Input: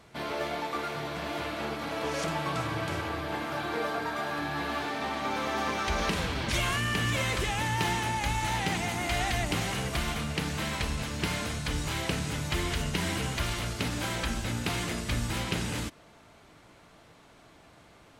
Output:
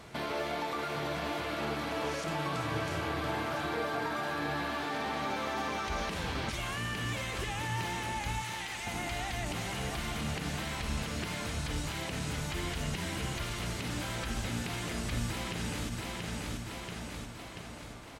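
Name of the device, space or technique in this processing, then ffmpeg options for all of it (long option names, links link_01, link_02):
de-esser from a sidechain: -filter_complex "[0:a]asettb=1/sr,asplit=3[link_01][link_02][link_03];[link_01]atrim=end=8.424[link_04];[link_02]atrim=start=8.42:end=8.87,asetpts=PTS-STARTPTS,afade=type=in:duration=0.004:curve=qsin,afade=type=out:start_time=0.446:duration=0.004:curve=qsin,highpass=1200[link_05];[link_03]atrim=start=8.866[link_06];[link_04][link_05]acrossfade=duration=0.004:curve1=hsin:curve2=qsin[link_07];[link_07][link_06]acrossfade=duration=0.004:curve1=qsin:curve2=hsin,aecho=1:1:683|1366|2049|2732|3415|4098:0.299|0.155|0.0807|0.042|0.0218|0.0114,asplit=2[link_08][link_09];[link_09]highpass=frequency=4900:poles=1,apad=whole_len=818843[link_10];[link_08][link_10]sidechaincompress=threshold=-48dB:ratio=5:attack=2.1:release=83,volume=5.5dB"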